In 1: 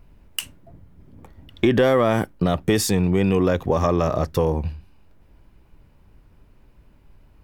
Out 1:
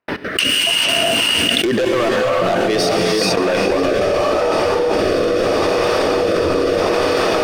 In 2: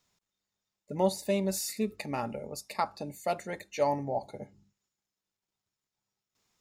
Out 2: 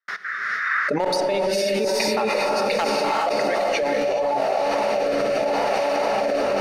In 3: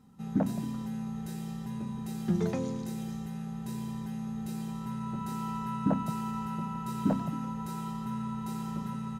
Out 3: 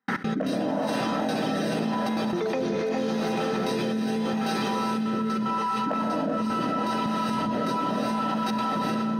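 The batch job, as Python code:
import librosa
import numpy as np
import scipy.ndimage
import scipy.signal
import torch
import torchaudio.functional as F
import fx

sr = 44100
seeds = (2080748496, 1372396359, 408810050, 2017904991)

p1 = fx.dereverb_blind(x, sr, rt60_s=1.9)
p2 = scipy.signal.sosfilt(scipy.signal.butter(2, 430.0, 'highpass', fs=sr, output='sos'), p1)
p3 = fx.rider(p2, sr, range_db=3, speed_s=2.0)
p4 = p2 + (p3 * 10.0 ** (2.0 / 20.0))
p5 = scipy.signal.savgol_filter(p4, 15, 4, mode='constant')
p6 = np.clip(p5, -10.0 ** (-16.5 / 20.0), 10.0 ** (-16.5 / 20.0))
p7 = fx.dmg_noise_band(p6, sr, seeds[0], low_hz=1200.0, high_hz=2000.0, level_db=-63.0)
p8 = p7 + fx.echo_diffused(p7, sr, ms=478, feedback_pct=79, wet_db=-10, dry=0)
p9 = fx.step_gate(p8, sr, bpm=187, pattern='.x.xxxxxxx.xx', floor_db=-60.0, edge_ms=4.5)
p10 = fx.rev_gated(p9, sr, seeds[1], gate_ms=460, shape='rising', drr_db=-1.0)
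p11 = fx.rotary(p10, sr, hz=0.8)
y = fx.env_flatten(p11, sr, amount_pct=100)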